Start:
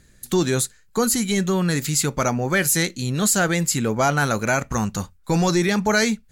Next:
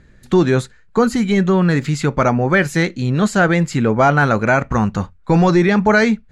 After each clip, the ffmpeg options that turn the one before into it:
-af "lowpass=1.9k,aemphasis=mode=production:type=cd,volume=7dB"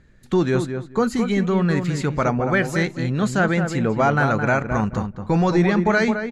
-filter_complex "[0:a]asplit=2[a][b];[b]adelay=215,lowpass=f=1.6k:p=1,volume=-6.5dB,asplit=2[c][d];[d]adelay=215,lowpass=f=1.6k:p=1,volume=0.2,asplit=2[e][f];[f]adelay=215,lowpass=f=1.6k:p=1,volume=0.2[g];[a][c][e][g]amix=inputs=4:normalize=0,volume=-5.5dB"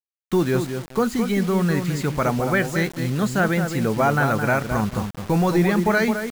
-af "acrusher=bits=5:mix=0:aa=0.000001,volume=-1dB"

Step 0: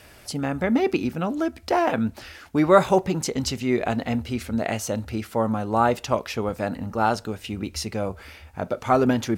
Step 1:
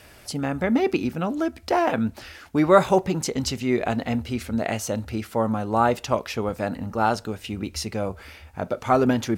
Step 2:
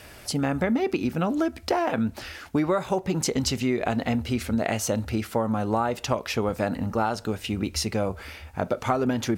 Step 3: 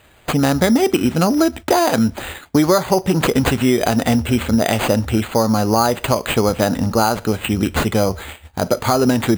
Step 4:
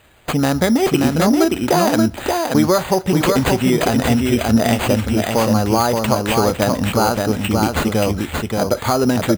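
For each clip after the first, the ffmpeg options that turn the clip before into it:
-af anull
-af "acompressor=threshold=-23dB:ratio=16,volume=3dB"
-af "agate=range=-14dB:threshold=-39dB:ratio=16:detection=peak,acrusher=samples=8:mix=1:aa=0.000001,alimiter=level_in=12dB:limit=-1dB:release=50:level=0:latency=1,volume=-2.5dB"
-af "aecho=1:1:578:0.668,volume=-1dB"

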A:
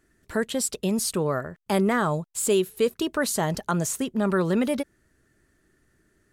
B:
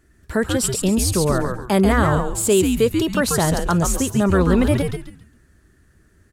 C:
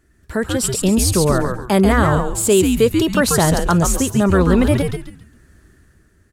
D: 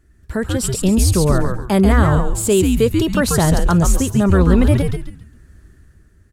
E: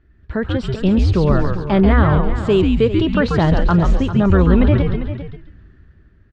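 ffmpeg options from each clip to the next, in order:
-filter_complex "[0:a]equalizer=f=62:w=0.76:g=11,asplit=5[a][b][c][d][e];[b]adelay=137,afreqshift=-130,volume=-4dB[f];[c]adelay=274,afreqshift=-260,volume=-14.5dB[g];[d]adelay=411,afreqshift=-390,volume=-24.9dB[h];[e]adelay=548,afreqshift=-520,volume=-35.4dB[i];[a][f][g][h][i]amix=inputs=5:normalize=0,volume=4.5dB"
-af "dynaudnorm=f=110:g=13:m=11.5dB,volume=-1dB"
-af "lowshelf=f=140:g=10,volume=-2.5dB"
-af "lowpass=f=3.7k:w=0.5412,lowpass=f=3.7k:w=1.3066,aecho=1:1:398:0.251"

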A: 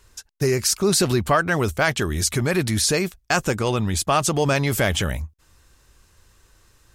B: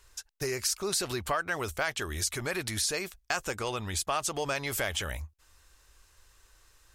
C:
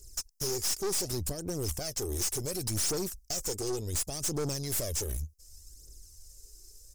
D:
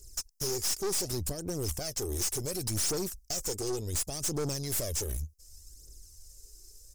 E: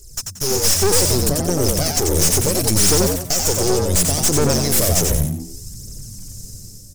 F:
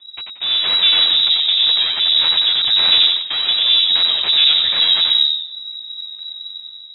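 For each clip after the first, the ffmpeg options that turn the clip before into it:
-af "equalizer=f=170:t=o:w=2.2:g=-13,acompressor=threshold=-28dB:ratio=2,volume=-3dB"
-af "firequalizer=gain_entry='entry(380,0);entry(1000,-30);entry(3500,-17);entry(5100,6)':delay=0.05:min_phase=1,aphaser=in_gain=1:out_gain=1:delay=2.8:decay=0.56:speed=0.68:type=triangular,aeval=exprs='(tanh(50.1*val(0)+0.5)-tanh(0.5))/50.1':c=same,volume=5.5dB"
-af anull
-filter_complex "[0:a]dynaudnorm=f=110:g=9:m=6.5dB,aeval=exprs='clip(val(0),-1,0.0119)':c=same,asplit=5[a][b][c][d][e];[b]adelay=90,afreqshift=86,volume=-4dB[f];[c]adelay=180,afreqshift=172,volume=-13.6dB[g];[d]adelay=270,afreqshift=258,volume=-23.3dB[h];[e]adelay=360,afreqshift=344,volume=-32.9dB[i];[a][f][g][h][i]amix=inputs=5:normalize=0,volume=9dB"
-af "lowpass=f=3.3k:t=q:w=0.5098,lowpass=f=3.3k:t=q:w=0.6013,lowpass=f=3.3k:t=q:w=0.9,lowpass=f=3.3k:t=q:w=2.563,afreqshift=-3900,volume=3.5dB"

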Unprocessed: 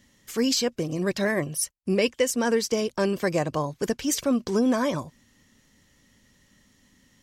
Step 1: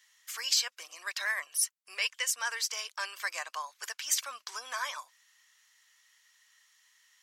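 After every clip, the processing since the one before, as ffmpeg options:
-af "highpass=f=1.1k:w=0.5412,highpass=f=1.1k:w=1.3066,volume=-1dB"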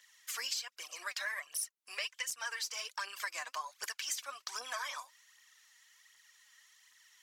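-af "aphaser=in_gain=1:out_gain=1:delay=4.3:decay=0.56:speed=1.3:type=triangular,acompressor=threshold=-36dB:ratio=5"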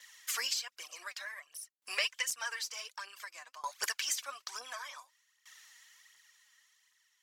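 -af "aeval=exprs='val(0)*pow(10,-20*if(lt(mod(0.55*n/s,1),2*abs(0.55)/1000),1-mod(0.55*n/s,1)/(2*abs(0.55)/1000),(mod(0.55*n/s,1)-2*abs(0.55)/1000)/(1-2*abs(0.55)/1000))/20)':c=same,volume=8.5dB"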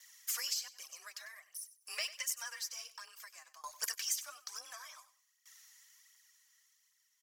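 -af "aecho=1:1:97|194|291:0.168|0.042|0.0105,afreqshift=33,aexciter=amount=2.5:drive=5.1:freq=4.9k,volume=-8dB"

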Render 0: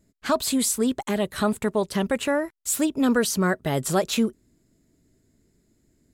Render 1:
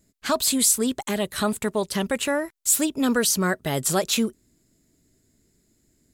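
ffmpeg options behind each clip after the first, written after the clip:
-af "highshelf=f=2.6k:g=8,volume=-1.5dB"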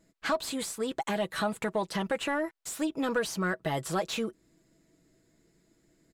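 -filter_complex "[0:a]aecho=1:1:6.1:0.53,acompressor=threshold=-29dB:ratio=2.5,asplit=2[a][b];[b]highpass=f=720:p=1,volume=11dB,asoftclip=type=tanh:threshold=-15.5dB[c];[a][c]amix=inputs=2:normalize=0,lowpass=f=1.3k:p=1,volume=-6dB"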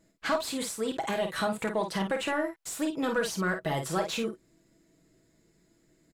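-af "aecho=1:1:27|51:0.237|0.447"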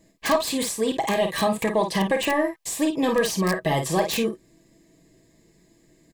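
-filter_complex "[0:a]acrossover=split=1400[a][b];[b]aeval=exprs='(mod(25.1*val(0)+1,2)-1)/25.1':c=same[c];[a][c]amix=inputs=2:normalize=0,asuperstop=centerf=1400:order=20:qfactor=5.3,volume=7.5dB"

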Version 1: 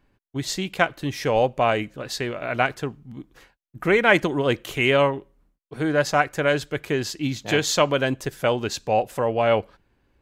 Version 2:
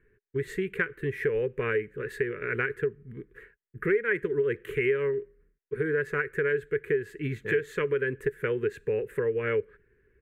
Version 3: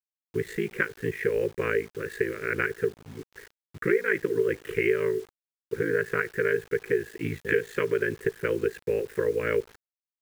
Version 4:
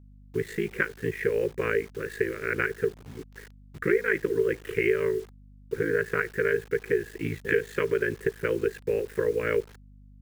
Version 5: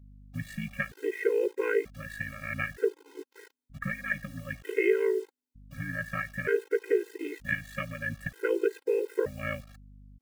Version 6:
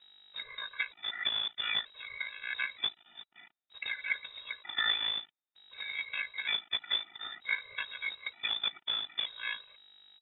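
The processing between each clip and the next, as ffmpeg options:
-af "firequalizer=gain_entry='entry(150,0);entry(290,-8);entry(420,15);entry(660,-29);entry(1000,-12);entry(1700,9);entry(3100,-13);entry(5200,-28);entry(8500,-11)':delay=0.05:min_phase=1,acompressor=threshold=-23dB:ratio=4,volume=-2dB"
-af "lowshelf=f=91:g=-5.5,aeval=exprs='val(0)*sin(2*PI*27*n/s)':c=same,acrusher=bits=8:mix=0:aa=0.000001,volume=4.5dB"
-af "aeval=exprs='val(0)+0.00316*(sin(2*PI*50*n/s)+sin(2*PI*2*50*n/s)/2+sin(2*PI*3*50*n/s)/3+sin(2*PI*4*50*n/s)/4+sin(2*PI*5*50*n/s)/5)':c=same"
-af "afftfilt=real='re*gt(sin(2*PI*0.54*pts/sr)*(1-2*mod(floor(b*sr/1024/270),2)),0)':imag='im*gt(sin(2*PI*0.54*pts/sr)*(1-2*mod(floor(b*sr/1024/270),2)),0)':win_size=1024:overlap=0.75"
-af "acrusher=bits=3:mode=log:mix=0:aa=0.000001,crystalizer=i=6.5:c=0,lowpass=f=3.3k:t=q:w=0.5098,lowpass=f=3.3k:t=q:w=0.6013,lowpass=f=3.3k:t=q:w=0.9,lowpass=f=3.3k:t=q:w=2.563,afreqshift=-3900,volume=-8dB"

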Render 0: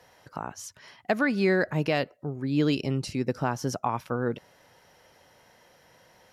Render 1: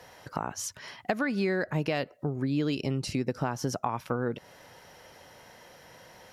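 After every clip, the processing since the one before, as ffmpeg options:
-af "acompressor=threshold=-33dB:ratio=4,volume=6dB"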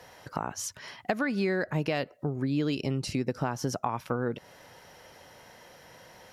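-af anull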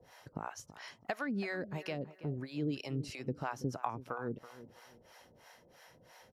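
-filter_complex "[0:a]acrossover=split=530[a][b];[a]aeval=exprs='val(0)*(1-1/2+1/2*cos(2*PI*3*n/s))':c=same[c];[b]aeval=exprs='val(0)*(1-1/2-1/2*cos(2*PI*3*n/s))':c=same[d];[c][d]amix=inputs=2:normalize=0,asplit=2[e][f];[f]adelay=329,lowpass=f=2.2k:p=1,volume=-14.5dB,asplit=2[g][h];[h]adelay=329,lowpass=f=2.2k:p=1,volume=0.32,asplit=2[i][j];[j]adelay=329,lowpass=f=2.2k:p=1,volume=0.32[k];[e][g][i][k]amix=inputs=4:normalize=0,volume=-3.5dB"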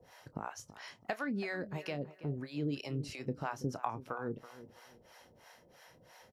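-filter_complex "[0:a]asplit=2[a][b];[b]adelay=28,volume=-14dB[c];[a][c]amix=inputs=2:normalize=0"

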